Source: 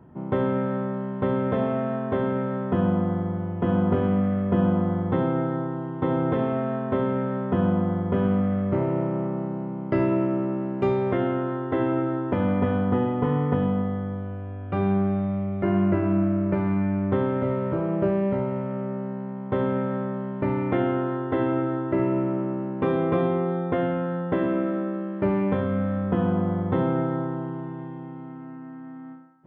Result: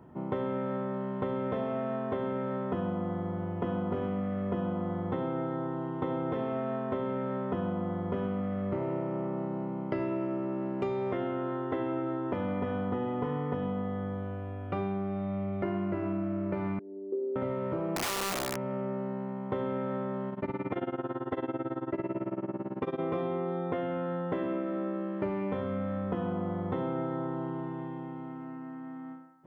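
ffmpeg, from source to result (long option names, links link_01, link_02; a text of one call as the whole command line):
ffmpeg -i in.wav -filter_complex "[0:a]asettb=1/sr,asplit=3[link_01][link_02][link_03];[link_01]atrim=end=16.794[link_04];[link_02]atrim=start=16.79:end=17.36,asetpts=PTS-STARTPTS,afade=type=in:duration=0.004:curve=qsin,afade=type=out:start_time=0.566:duration=0.004:curve=qsin,asuperpass=centerf=380:order=4:qfactor=3.5[link_05];[link_03]atrim=start=17.356[link_06];[link_04][link_05]acrossfade=duration=0.004:curve1=hsin:curve2=qsin[link_07];[link_07][link_06]acrossfade=duration=0.004:curve1=qsin:curve2=hsin,asettb=1/sr,asplit=3[link_08][link_09][link_10];[link_08]atrim=end=17.964[link_11];[link_09]atrim=start=17.96:end=18.57,asetpts=PTS-STARTPTS,afade=type=in:duration=0.004:curve=qsin,afade=type=out:start_time=0.606:duration=0.004:curve=qsin,aeval=exprs='(mod(10*val(0)+1,2)-1)/10':channel_layout=same[link_12];[link_10]atrim=start=18.566[link_13];[link_11][link_12]acrossfade=duration=0.004:curve1=hsin:curve2=qsin[link_14];[link_14][link_13]acrossfade=duration=0.004:curve1=qsin:curve2=hsin,asplit=3[link_15][link_16][link_17];[link_15]afade=type=out:start_time=20.3:duration=0.02[link_18];[link_16]tremolo=f=18:d=0.92,afade=type=in:start_time=20.3:duration=0.02,afade=type=out:start_time=22.99:duration=0.02[link_19];[link_17]afade=type=in:start_time=22.99:duration=0.02[link_20];[link_18][link_19][link_20]amix=inputs=3:normalize=0,bass=frequency=250:gain=-5,treble=frequency=4000:gain=4,bandreject=frequency=1600:width=22,acompressor=threshold=-30dB:ratio=4" out.wav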